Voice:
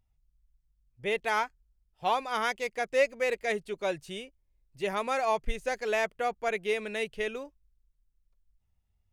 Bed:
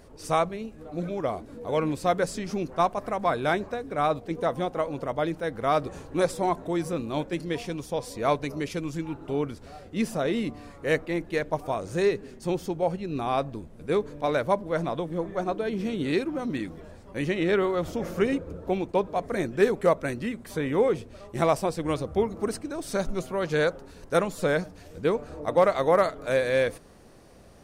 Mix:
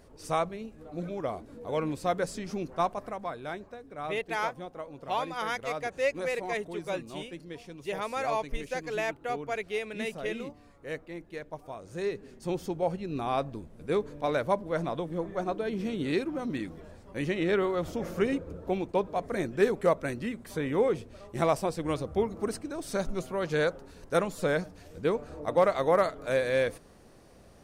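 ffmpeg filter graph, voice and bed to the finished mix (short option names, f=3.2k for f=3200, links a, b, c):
-filter_complex "[0:a]adelay=3050,volume=-3dB[a];[1:a]volume=5dB,afade=t=out:st=2.91:d=0.42:silence=0.398107,afade=t=in:st=11.8:d=0.87:silence=0.334965[b];[a][b]amix=inputs=2:normalize=0"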